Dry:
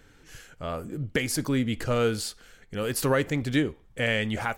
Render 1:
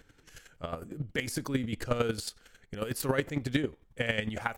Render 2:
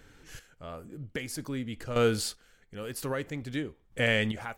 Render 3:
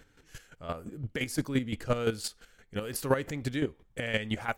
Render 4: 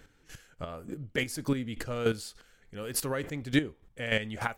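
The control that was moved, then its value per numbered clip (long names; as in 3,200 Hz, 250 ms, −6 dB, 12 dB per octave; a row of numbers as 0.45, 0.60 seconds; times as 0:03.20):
square-wave tremolo, speed: 11, 0.51, 5.8, 3.4 Hertz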